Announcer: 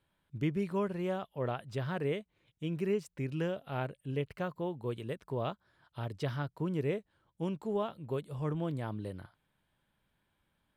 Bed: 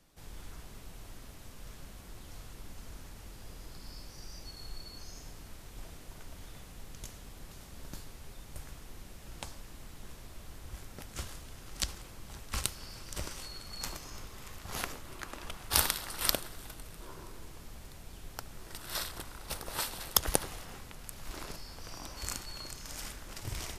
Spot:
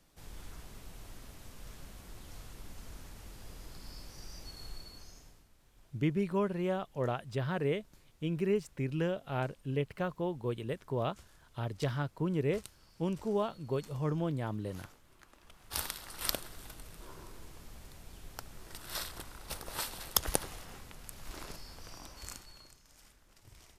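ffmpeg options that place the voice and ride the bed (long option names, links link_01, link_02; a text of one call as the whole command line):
ffmpeg -i stem1.wav -i stem2.wav -filter_complex "[0:a]adelay=5600,volume=1.5dB[link_01];[1:a]volume=13.5dB,afade=type=out:start_time=4.66:duration=0.82:silence=0.158489,afade=type=in:start_time=15.44:duration=1.15:silence=0.188365,afade=type=out:start_time=21.7:duration=1.13:silence=0.158489[link_02];[link_01][link_02]amix=inputs=2:normalize=0" out.wav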